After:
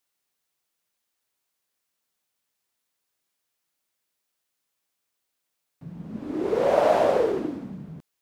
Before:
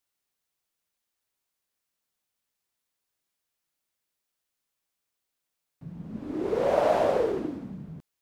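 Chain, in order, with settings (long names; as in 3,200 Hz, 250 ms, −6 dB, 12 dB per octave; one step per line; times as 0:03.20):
low-shelf EQ 95 Hz −8 dB
level +3.5 dB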